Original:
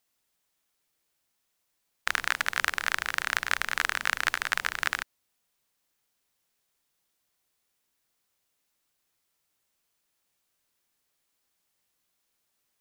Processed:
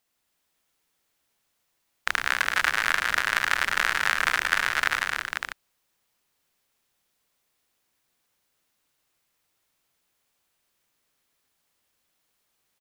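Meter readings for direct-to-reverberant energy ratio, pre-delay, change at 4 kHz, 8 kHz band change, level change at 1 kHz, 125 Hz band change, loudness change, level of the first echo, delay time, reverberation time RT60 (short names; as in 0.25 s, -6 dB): none, none, +3.5 dB, +2.0 dB, +5.0 dB, +5.0 dB, +4.0 dB, -6.5 dB, 0.11 s, none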